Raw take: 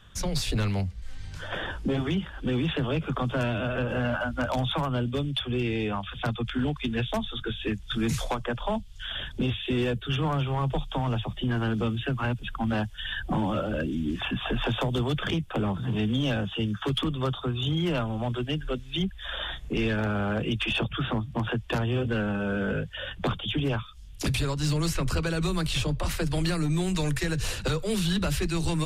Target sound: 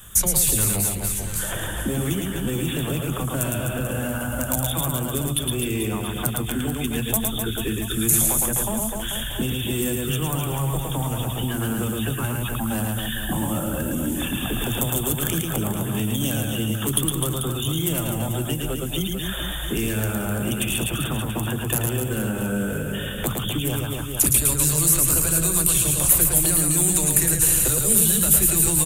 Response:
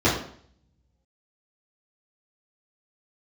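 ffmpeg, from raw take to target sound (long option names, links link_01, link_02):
-filter_complex "[0:a]aecho=1:1:110|253|438.9|680.6|994.7:0.631|0.398|0.251|0.158|0.1,acrossover=split=300|5300[link_01][link_02][link_03];[link_01]acompressor=threshold=-31dB:ratio=4[link_04];[link_02]acompressor=threshold=-37dB:ratio=4[link_05];[link_03]acompressor=threshold=-46dB:ratio=4[link_06];[link_04][link_05][link_06]amix=inputs=3:normalize=0,aexciter=amount=15.4:drive=3.6:freq=7400,asplit=2[link_07][link_08];[1:a]atrim=start_sample=2205[link_09];[link_08][link_09]afir=irnorm=-1:irlink=0,volume=-38dB[link_10];[link_07][link_10]amix=inputs=2:normalize=0,crystalizer=i=0.5:c=0,volume=6dB"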